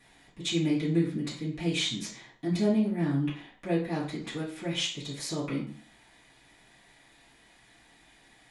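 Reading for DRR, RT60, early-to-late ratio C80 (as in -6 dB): -10.5 dB, 0.45 s, 12.0 dB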